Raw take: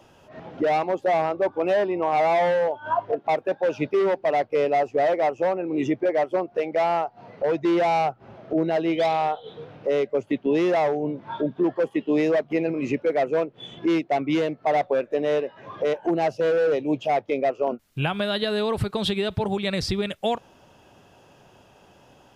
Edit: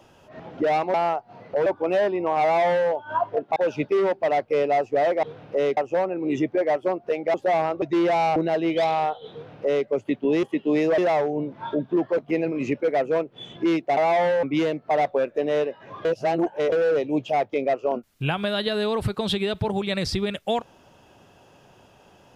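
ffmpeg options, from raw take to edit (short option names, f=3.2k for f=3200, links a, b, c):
-filter_complex "[0:a]asplit=16[a][b][c][d][e][f][g][h][i][j][k][l][m][n][o][p];[a]atrim=end=0.942[q];[b]atrim=start=6.818:end=7.542[r];[c]atrim=start=1.418:end=3.322[s];[d]atrim=start=3.578:end=5.252[t];[e]atrim=start=9.548:end=10.092[u];[f]atrim=start=5.248:end=6.822[v];[g]atrim=start=0.938:end=1.422[w];[h]atrim=start=7.538:end=8.082[x];[i]atrim=start=8.578:end=10.652[y];[j]atrim=start=11.848:end=12.402[z];[k]atrim=start=10.648:end=11.852[aa];[l]atrim=start=12.398:end=14.192[ab];[m]atrim=start=2.188:end=2.652[ac];[n]atrim=start=14.188:end=15.812[ad];[o]atrim=start=15.808:end=16.482,asetpts=PTS-STARTPTS,areverse[ae];[p]atrim=start=16.478[af];[q][r]acrossfade=d=0.004:c1=hsin:c2=hsin[ag];[ag][s]acrossfade=d=0.004:c1=hsin:c2=hsin[ah];[ah][t]acrossfade=d=0.004:c1=hsin:c2=hsin[ai];[ai][u]acrossfade=d=0.004:c1=hsin:c2=hsin[aj];[aj][v]acrossfade=d=0.004:c1=hsin:c2=hsin[ak];[ak][w]acrossfade=d=0.004:c1=hsin:c2=hsin[al];[al][x]acrossfade=d=0.004:c1=hsin:c2=hsin[am];[am][y]acrossfade=d=0.004:c1=hsin:c2=hsin[an];[an][z]acrossfade=d=0.004:c1=hsin:c2=hsin[ao];[ao][aa]acrossfade=d=0.004:c1=hsin:c2=hsin[ap];[ap][ab]acrossfade=d=0.004:c1=hsin:c2=hsin[aq];[aq][ac]acrossfade=d=0.004:c1=hsin:c2=hsin[ar];[ar][ad]acrossfade=d=0.004:c1=hsin:c2=hsin[as];[as][ae]acrossfade=d=0.004:c1=hsin:c2=hsin[at];[at][af]acrossfade=d=0.004:c1=hsin:c2=hsin"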